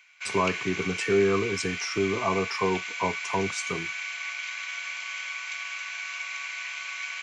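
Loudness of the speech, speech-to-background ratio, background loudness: -28.5 LUFS, 4.0 dB, -32.5 LUFS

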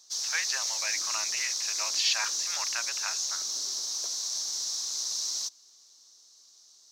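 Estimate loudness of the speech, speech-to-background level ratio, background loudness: -33.0 LUFS, -3.5 dB, -29.5 LUFS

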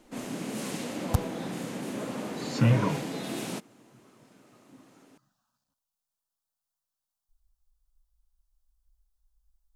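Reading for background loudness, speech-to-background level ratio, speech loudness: -35.0 LUFS, 6.5 dB, -28.5 LUFS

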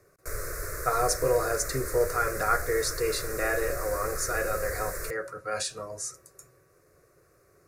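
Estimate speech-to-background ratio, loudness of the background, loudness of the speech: 6.0 dB, -35.5 LUFS, -29.5 LUFS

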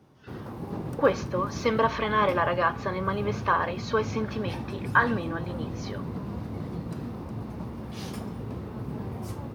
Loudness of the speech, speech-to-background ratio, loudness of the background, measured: -27.0 LUFS, 9.0 dB, -36.0 LUFS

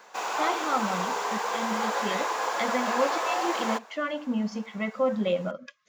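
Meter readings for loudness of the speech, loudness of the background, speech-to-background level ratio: -31.0 LUFS, -29.0 LUFS, -2.0 dB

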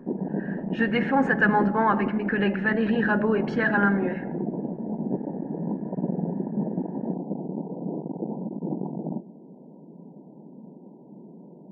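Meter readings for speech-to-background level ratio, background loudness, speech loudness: 7.0 dB, -31.0 LUFS, -24.0 LUFS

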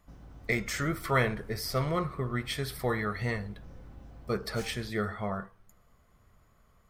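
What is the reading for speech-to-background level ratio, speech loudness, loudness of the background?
19.0 dB, -32.0 LUFS, -51.0 LUFS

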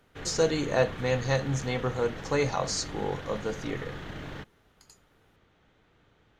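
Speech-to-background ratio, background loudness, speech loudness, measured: 11.0 dB, -40.5 LUFS, -29.5 LUFS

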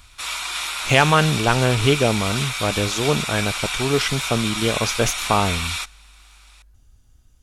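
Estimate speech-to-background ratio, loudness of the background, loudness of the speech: 4.0 dB, -25.0 LUFS, -21.0 LUFS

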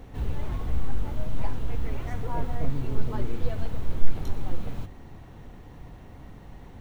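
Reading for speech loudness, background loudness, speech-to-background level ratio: -37.5 LUFS, -35.0 LUFS, -2.5 dB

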